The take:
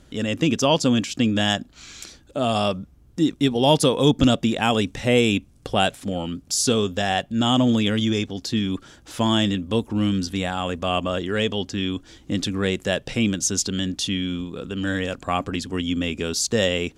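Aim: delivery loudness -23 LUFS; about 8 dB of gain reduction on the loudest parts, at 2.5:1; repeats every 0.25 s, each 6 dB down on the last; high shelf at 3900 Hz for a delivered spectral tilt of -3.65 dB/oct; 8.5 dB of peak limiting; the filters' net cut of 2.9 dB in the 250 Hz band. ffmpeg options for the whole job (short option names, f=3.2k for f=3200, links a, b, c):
-af "equalizer=f=250:t=o:g=-3.5,highshelf=f=3.9k:g=7.5,acompressor=threshold=-25dB:ratio=2.5,alimiter=limit=-18.5dB:level=0:latency=1,aecho=1:1:250|500|750|1000|1250|1500:0.501|0.251|0.125|0.0626|0.0313|0.0157,volume=6dB"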